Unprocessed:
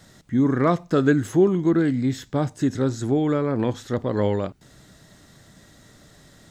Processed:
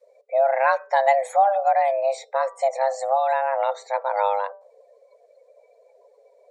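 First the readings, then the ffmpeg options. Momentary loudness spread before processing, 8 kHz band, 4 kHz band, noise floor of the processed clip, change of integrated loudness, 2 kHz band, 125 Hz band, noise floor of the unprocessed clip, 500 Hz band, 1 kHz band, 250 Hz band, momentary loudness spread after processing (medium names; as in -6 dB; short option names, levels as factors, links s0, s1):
7 LU, -2.0 dB, -3.0 dB, -58 dBFS, +0.5 dB, +4.5 dB, under -40 dB, -53 dBFS, +2.0 dB, +12.5 dB, under -40 dB, 7 LU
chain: -af "bandreject=f=191.1:t=h:w=4,bandreject=f=382.2:t=h:w=4,bandreject=f=573.3:t=h:w=4,bandreject=f=764.4:t=h:w=4,bandreject=f=955.5:t=h:w=4,bandreject=f=1146.6:t=h:w=4,bandreject=f=1337.7:t=h:w=4,bandreject=f=1528.8:t=h:w=4,bandreject=f=1719.9:t=h:w=4,bandreject=f=1911:t=h:w=4,bandreject=f=2102.1:t=h:w=4,bandreject=f=2293.2:t=h:w=4,bandreject=f=2484.3:t=h:w=4,bandreject=f=2675.4:t=h:w=4,bandreject=f=2866.5:t=h:w=4,bandreject=f=3057.6:t=h:w=4,bandreject=f=3248.7:t=h:w=4,bandreject=f=3439.8:t=h:w=4,bandreject=f=3630.9:t=h:w=4,bandreject=f=3822:t=h:w=4,bandreject=f=4013.1:t=h:w=4,bandreject=f=4204.2:t=h:w=4,bandreject=f=4395.3:t=h:w=4,bandreject=f=4586.4:t=h:w=4,bandreject=f=4777.5:t=h:w=4,bandreject=f=4968.6:t=h:w=4,bandreject=f=5159.7:t=h:w=4,bandreject=f=5350.8:t=h:w=4,bandreject=f=5541.9:t=h:w=4,bandreject=f=5733:t=h:w=4,afreqshift=400,afftdn=nr=26:nf=-44"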